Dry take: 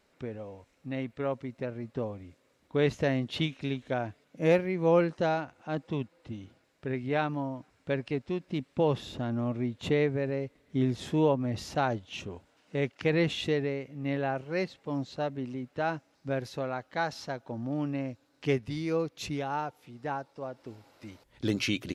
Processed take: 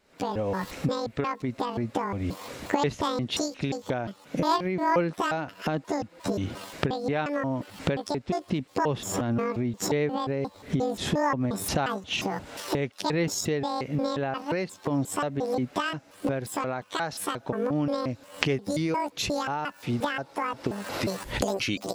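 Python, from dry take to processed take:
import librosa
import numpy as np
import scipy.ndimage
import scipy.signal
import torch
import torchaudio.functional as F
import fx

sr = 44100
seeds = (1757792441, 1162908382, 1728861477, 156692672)

y = fx.pitch_trill(x, sr, semitones=11.5, every_ms=177)
y = fx.recorder_agc(y, sr, target_db=-20.0, rise_db_per_s=70.0, max_gain_db=30)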